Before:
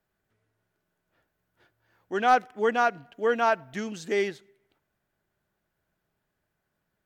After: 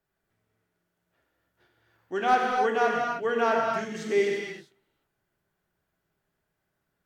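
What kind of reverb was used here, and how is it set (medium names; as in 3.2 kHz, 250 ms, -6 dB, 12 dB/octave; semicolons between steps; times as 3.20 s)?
gated-style reverb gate 330 ms flat, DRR -1.5 dB; trim -3.5 dB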